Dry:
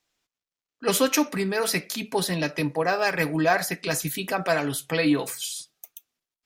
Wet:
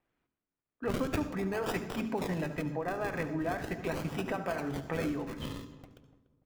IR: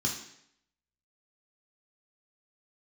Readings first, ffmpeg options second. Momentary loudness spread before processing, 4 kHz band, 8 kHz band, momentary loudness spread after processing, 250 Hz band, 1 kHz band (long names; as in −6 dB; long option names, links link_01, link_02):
8 LU, −16.5 dB, −21.5 dB, 6 LU, −7.5 dB, −10.0 dB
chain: -filter_complex "[0:a]lowpass=9400,highshelf=frequency=3600:gain=-8,acrossover=split=2700[link_01][link_02];[link_01]acompressor=threshold=-32dB:ratio=6[link_03];[link_02]acrusher=samples=39:mix=1:aa=0.000001:lfo=1:lforange=39:lforate=0.41[link_04];[link_03][link_04]amix=inputs=2:normalize=0,asplit=2[link_05][link_06];[link_06]adelay=291,lowpass=frequency=1100:poles=1,volume=-15dB,asplit=2[link_07][link_08];[link_08]adelay=291,lowpass=frequency=1100:poles=1,volume=0.38,asplit=2[link_09][link_10];[link_10]adelay=291,lowpass=frequency=1100:poles=1,volume=0.38[link_11];[link_05][link_07][link_09][link_11]amix=inputs=4:normalize=0,asplit=2[link_12][link_13];[1:a]atrim=start_sample=2205,adelay=71[link_14];[link_13][link_14]afir=irnorm=-1:irlink=0,volume=-17dB[link_15];[link_12][link_15]amix=inputs=2:normalize=0"